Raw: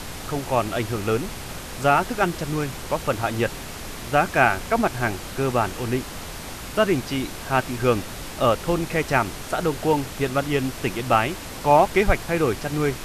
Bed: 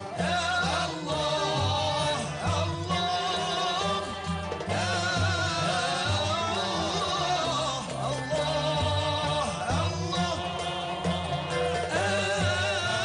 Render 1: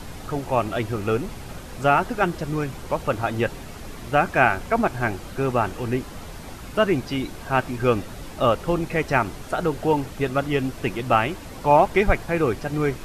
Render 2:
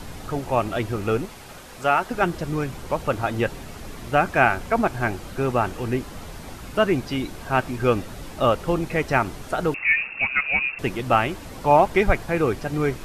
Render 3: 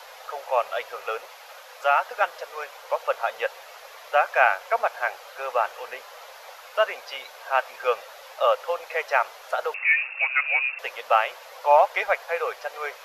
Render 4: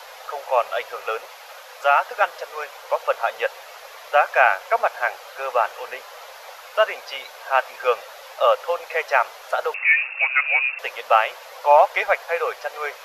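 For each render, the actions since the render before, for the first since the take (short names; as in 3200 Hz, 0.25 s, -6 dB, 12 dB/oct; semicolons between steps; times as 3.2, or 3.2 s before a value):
denoiser 8 dB, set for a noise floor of -35 dBFS
1.25–2.11 low shelf 320 Hz -11 dB; 9.74–10.79 inverted band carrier 2700 Hz
elliptic high-pass 510 Hz, stop band 40 dB; bell 8700 Hz -12.5 dB 0.44 oct
gain +3.5 dB; limiter -3 dBFS, peak gain reduction 1.5 dB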